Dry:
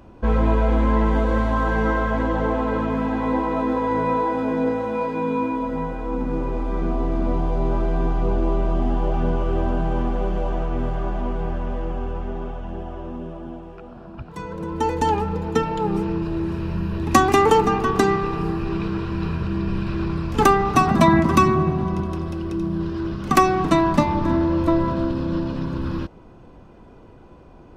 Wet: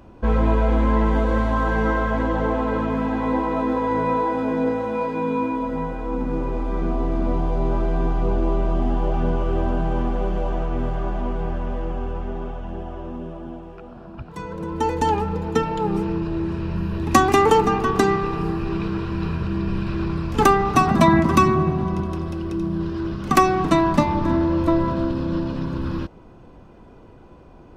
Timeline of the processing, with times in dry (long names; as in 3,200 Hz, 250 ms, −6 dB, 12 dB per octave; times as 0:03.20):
0:16.20–0:16.76: Bessel low-pass filter 7,800 Hz